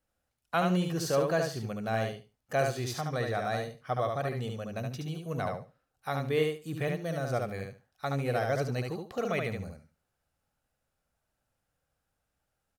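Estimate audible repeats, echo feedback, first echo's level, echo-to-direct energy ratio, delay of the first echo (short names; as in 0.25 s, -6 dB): 3, 19%, -4.0 dB, -4.0 dB, 72 ms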